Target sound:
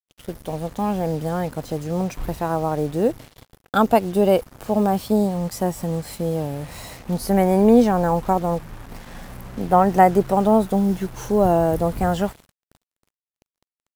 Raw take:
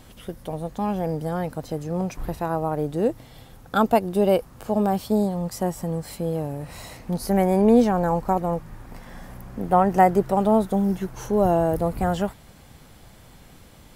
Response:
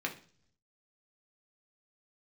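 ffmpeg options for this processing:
-af "agate=range=-33dB:threshold=-40dB:ratio=3:detection=peak,acrusher=bits=6:mix=0:aa=0.5,volume=2.5dB"

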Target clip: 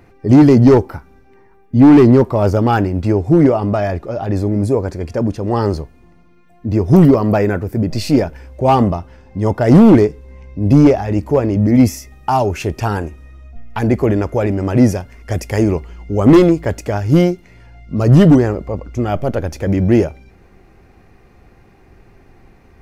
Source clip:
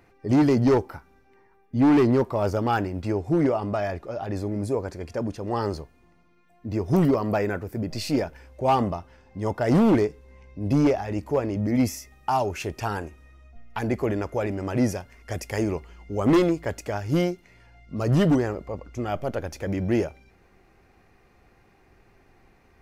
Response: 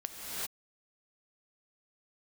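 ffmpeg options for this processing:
-af "lowshelf=frequency=440:gain=7,volume=6.5dB"

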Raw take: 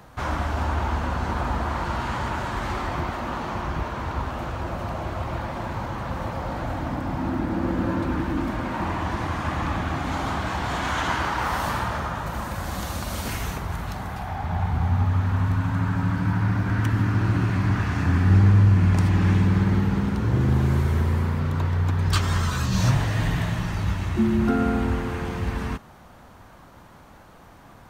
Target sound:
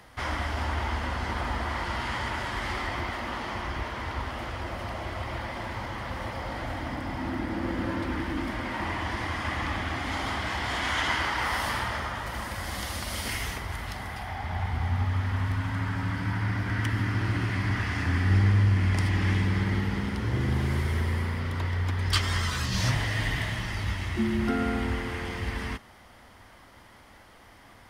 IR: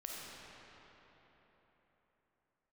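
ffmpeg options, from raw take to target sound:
-af "equalizer=frequency=160:width_type=o:width=0.33:gain=-10,equalizer=frequency=2000:width_type=o:width=0.33:gain=11,equalizer=frequency=3150:width_type=o:width=0.33:gain=8,equalizer=frequency=5000:width_type=o:width=0.33:gain=9,equalizer=frequency=10000:width_type=o:width=0.33:gain=9,volume=-5dB"

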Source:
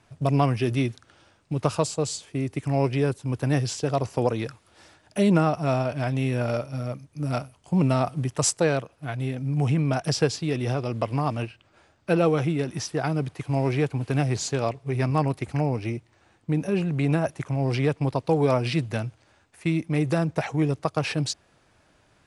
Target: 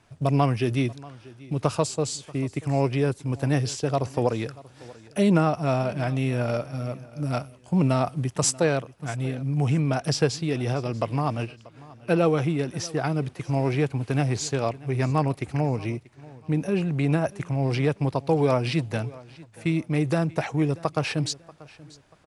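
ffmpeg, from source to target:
ffmpeg -i in.wav -af "aecho=1:1:636|1272:0.0891|0.0285" out.wav

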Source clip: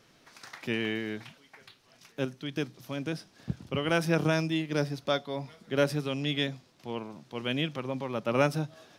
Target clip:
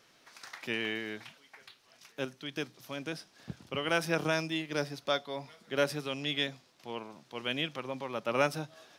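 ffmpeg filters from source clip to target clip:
ffmpeg -i in.wav -af "lowshelf=frequency=330:gain=-11" out.wav

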